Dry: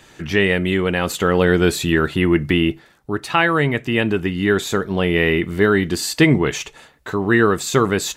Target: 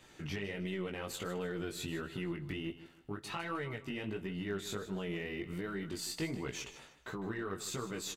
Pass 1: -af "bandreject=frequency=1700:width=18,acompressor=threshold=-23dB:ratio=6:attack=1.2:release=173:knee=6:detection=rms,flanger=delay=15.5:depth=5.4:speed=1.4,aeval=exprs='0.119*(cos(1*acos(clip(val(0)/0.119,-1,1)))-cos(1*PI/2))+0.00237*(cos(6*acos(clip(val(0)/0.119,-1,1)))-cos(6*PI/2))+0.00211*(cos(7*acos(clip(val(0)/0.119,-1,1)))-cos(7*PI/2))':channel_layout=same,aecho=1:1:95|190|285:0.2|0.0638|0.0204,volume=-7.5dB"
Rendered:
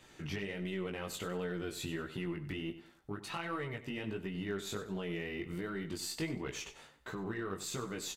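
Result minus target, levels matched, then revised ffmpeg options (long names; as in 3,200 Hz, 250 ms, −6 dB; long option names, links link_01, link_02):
echo 59 ms early
-af "bandreject=frequency=1700:width=18,acompressor=threshold=-23dB:ratio=6:attack=1.2:release=173:knee=6:detection=rms,flanger=delay=15.5:depth=5.4:speed=1.4,aeval=exprs='0.119*(cos(1*acos(clip(val(0)/0.119,-1,1)))-cos(1*PI/2))+0.00237*(cos(6*acos(clip(val(0)/0.119,-1,1)))-cos(6*PI/2))+0.00211*(cos(7*acos(clip(val(0)/0.119,-1,1)))-cos(7*PI/2))':channel_layout=same,aecho=1:1:154|308|462:0.2|0.0638|0.0204,volume=-7.5dB"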